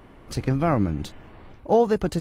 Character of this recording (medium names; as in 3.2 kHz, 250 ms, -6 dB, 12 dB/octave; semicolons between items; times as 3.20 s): noise floor -49 dBFS; spectral tilt -6.0 dB/octave